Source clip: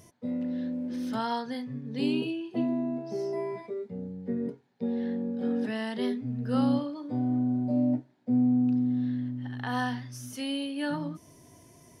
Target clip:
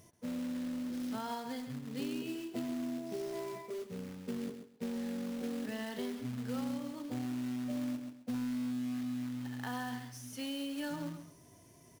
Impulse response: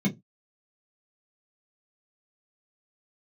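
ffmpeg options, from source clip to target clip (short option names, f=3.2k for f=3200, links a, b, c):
-af "acrusher=bits=3:mode=log:mix=0:aa=0.000001,aecho=1:1:133|266|399:0.266|0.0532|0.0106,acompressor=threshold=-29dB:ratio=6,volume=-5.5dB"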